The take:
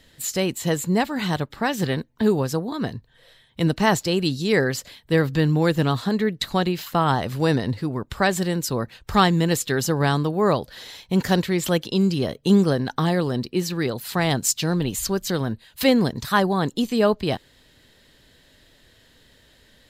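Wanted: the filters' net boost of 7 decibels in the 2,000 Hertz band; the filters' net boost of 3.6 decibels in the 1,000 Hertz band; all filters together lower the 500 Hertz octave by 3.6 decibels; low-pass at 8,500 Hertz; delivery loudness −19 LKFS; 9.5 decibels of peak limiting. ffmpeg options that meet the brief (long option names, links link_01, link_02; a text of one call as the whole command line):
ffmpeg -i in.wav -af "lowpass=8500,equalizer=frequency=500:width_type=o:gain=-6,equalizer=frequency=1000:width_type=o:gain=4.5,equalizer=frequency=2000:width_type=o:gain=7.5,volume=4.5dB,alimiter=limit=-5.5dB:level=0:latency=1" out.wav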